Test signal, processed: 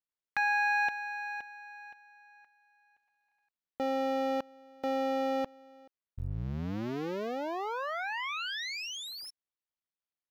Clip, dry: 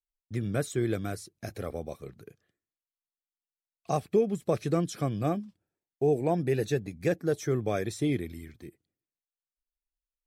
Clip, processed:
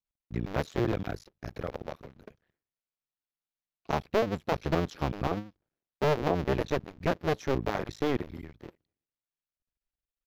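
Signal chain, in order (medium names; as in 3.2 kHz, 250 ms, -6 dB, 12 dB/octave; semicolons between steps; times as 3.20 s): cycle switcher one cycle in 2, muted; boxcar filter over 5 samples; trim +2 dB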